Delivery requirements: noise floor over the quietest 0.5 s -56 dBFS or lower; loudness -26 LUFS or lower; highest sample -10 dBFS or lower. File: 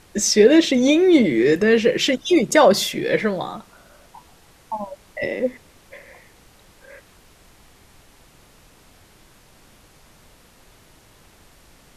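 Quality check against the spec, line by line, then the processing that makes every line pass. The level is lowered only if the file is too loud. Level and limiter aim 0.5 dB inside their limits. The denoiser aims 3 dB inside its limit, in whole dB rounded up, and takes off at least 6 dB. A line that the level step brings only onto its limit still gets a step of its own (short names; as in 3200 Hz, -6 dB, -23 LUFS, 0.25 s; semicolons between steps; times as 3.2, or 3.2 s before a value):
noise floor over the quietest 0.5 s -51 dBFS: fail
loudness -17.5 LUFS: fail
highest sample -3.0 dBFS: fail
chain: gain -9 dB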